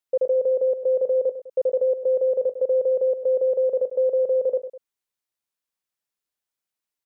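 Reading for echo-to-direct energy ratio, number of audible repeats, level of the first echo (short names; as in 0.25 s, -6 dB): -11.0 dB, 2, -12.0 dB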